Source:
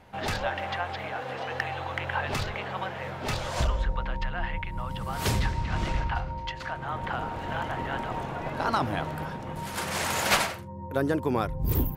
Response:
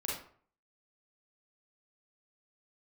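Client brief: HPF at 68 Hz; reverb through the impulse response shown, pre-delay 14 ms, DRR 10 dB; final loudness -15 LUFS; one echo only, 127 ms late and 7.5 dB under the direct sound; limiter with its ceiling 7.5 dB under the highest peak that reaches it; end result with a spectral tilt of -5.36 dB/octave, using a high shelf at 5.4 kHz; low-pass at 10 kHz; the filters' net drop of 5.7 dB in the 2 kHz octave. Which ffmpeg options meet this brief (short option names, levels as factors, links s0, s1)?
-filter_complex "[0:a]highpass=68,lowpass=10000,equalizer=f=2000:t=o:g=-7,highshelf=f=5400:g=-5,alimiter=limit=0.0841:level=0:latency=1,aecho=1:1:127:0.422,asplit=2[s0][s1];[1:a]atrim=start_sample=2205,adelay=14[s2];[s1][s2]afir=irnorm=-1:irlink=0,volume=0.224[s3];[s0][s3]amix=inputs=2:normalize=0,volume=7.5"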